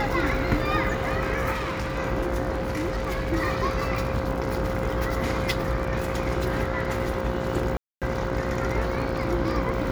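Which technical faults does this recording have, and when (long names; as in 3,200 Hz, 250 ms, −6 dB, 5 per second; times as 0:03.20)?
mains buzz 60 Hz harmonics 27 −31 dBFS
surface crackle 37 per second −30 dBFS
whistle 530 Hz −31 dBFS
0:01.52–0:01.98: clipping −25.5 dBFS
0:02.53–0:03.33: clipping −23 dBFS
0:07.77–0:08.02: drop-out 247 ms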